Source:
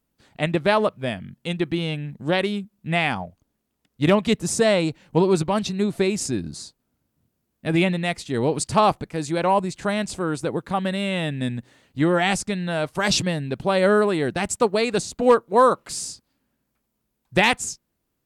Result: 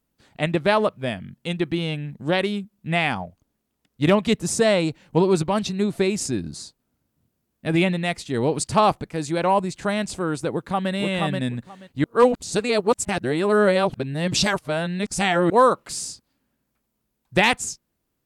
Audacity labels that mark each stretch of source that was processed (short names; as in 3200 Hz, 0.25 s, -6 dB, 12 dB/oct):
10.510000	10.910000	echo throw 0.48 s, feedback 15%, level -3 dB
12.040000	15.500000	reverse